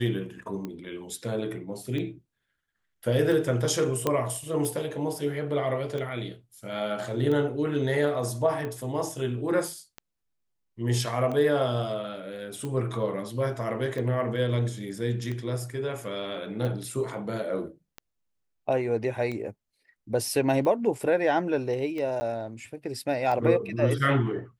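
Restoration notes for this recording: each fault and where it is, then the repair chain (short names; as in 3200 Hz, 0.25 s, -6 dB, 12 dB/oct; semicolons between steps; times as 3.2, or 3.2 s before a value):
tick 45 rpm -22 dBFS
4.07 pop -11 dBFS
22.2–22.21 gap 10 ms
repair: de-click; interpolate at 22.2, 10 ms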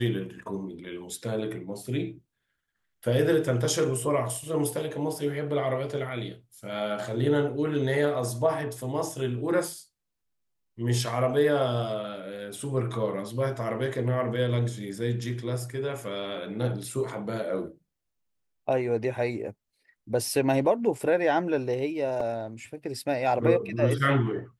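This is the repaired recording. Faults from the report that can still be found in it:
none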